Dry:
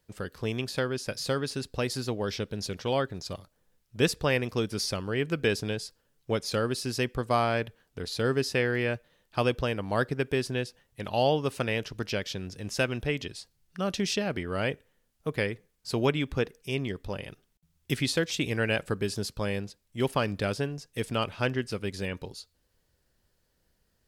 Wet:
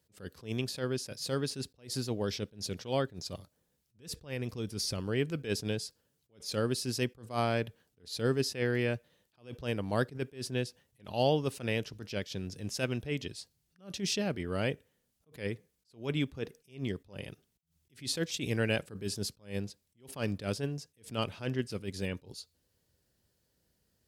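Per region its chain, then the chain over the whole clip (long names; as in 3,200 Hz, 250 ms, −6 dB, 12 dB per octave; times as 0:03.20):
0:03.98–0:04.98: low-shelf EQ 70 Hz +11.5 dB + downward compressor, threshold −28 dBFS
whole clip: high-pass filter 70 Hz 12 dB per octave; parametric band 1,300 Hz −6 dB 2.4 octaves; level that may rise only so fast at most 190 dB per second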